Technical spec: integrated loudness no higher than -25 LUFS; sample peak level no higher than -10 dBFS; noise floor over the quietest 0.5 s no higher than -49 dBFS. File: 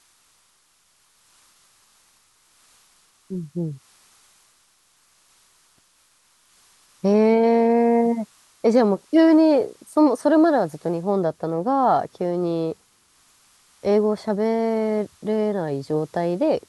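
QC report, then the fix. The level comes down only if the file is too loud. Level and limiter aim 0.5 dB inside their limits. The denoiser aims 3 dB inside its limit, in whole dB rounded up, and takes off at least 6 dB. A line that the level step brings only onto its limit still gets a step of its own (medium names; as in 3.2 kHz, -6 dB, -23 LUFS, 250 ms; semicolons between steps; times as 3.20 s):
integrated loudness -20.5 LUFS: fail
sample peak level -6.0 dBFS: fail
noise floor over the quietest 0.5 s -62 dBFS: pass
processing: trim -5 dB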